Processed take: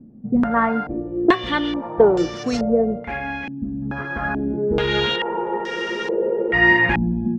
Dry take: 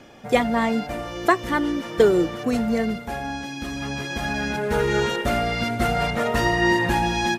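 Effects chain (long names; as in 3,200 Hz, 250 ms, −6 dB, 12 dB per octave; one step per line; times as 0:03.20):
hum removal 183.3 Hz, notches 12
frozen spectrum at 0:05.19, 1.34 s
low-pass on a step sequencer 2.3 Hz 220–5,500 Hz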